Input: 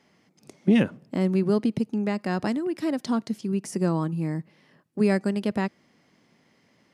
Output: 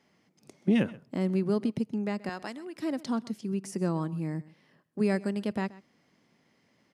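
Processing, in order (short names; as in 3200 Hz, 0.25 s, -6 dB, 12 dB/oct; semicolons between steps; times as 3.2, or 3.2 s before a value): 2.29–2.76 HPF 850 Hz 6 dB/oct; echo 0.129 s -20 dB; gain -5 dB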